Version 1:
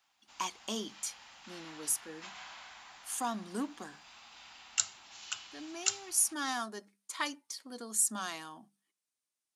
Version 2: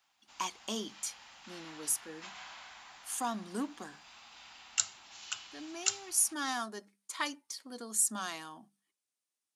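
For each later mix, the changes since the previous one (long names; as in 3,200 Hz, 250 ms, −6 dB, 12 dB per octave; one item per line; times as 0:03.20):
nothing changed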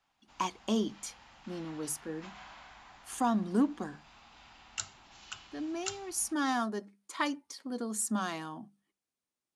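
speech +4.0 dB
master: add spectral tilt −3 dB per octave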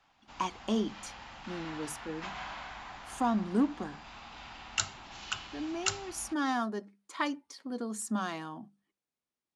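background +9.5 dB
master: add high-shelf EQ 8,100 Hz −11 dB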